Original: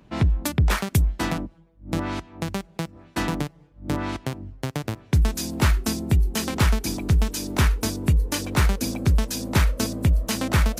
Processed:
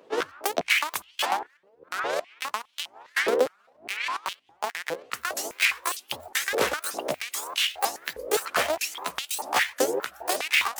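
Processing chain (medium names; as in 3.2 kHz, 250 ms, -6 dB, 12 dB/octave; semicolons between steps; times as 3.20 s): sawtooth pitch modulation +10.5 st, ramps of 314 ms; step-sequenced high-pass 4.9 Hz 480–3000 Hz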